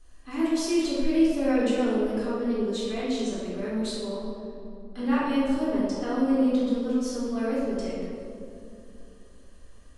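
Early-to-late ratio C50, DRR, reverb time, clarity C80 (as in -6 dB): -2.5 dB, -9.5 dB, 2.8 s, 0.5 dB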